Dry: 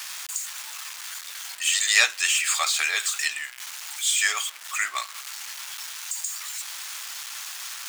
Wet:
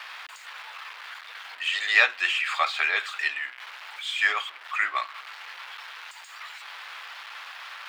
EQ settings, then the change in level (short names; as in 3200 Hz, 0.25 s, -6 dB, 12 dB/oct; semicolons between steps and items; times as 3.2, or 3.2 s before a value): steep high-pass 250 Hz 72 dB/oct; air absorption 410 m; +5.5 dB